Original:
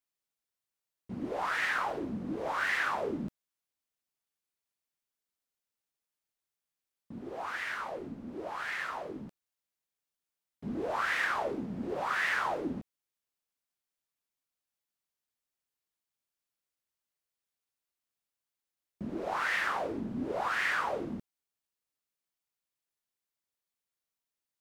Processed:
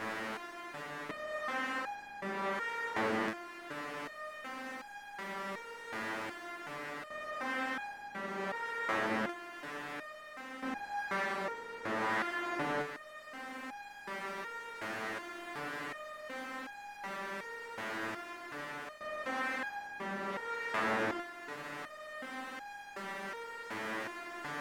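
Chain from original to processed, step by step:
compressor on every frequency bin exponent 0.2
speech leveller within 4 dB 2 s
step-sequenced resonator 2.7 Hz 110–820 Hz
level +2 dB

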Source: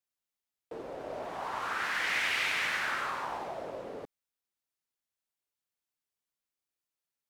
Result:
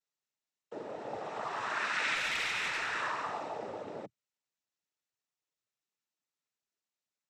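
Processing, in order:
cochlear-implant simulation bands 12
0:02.15–0:02.96: tube saturation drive 27 dB, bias 0.25

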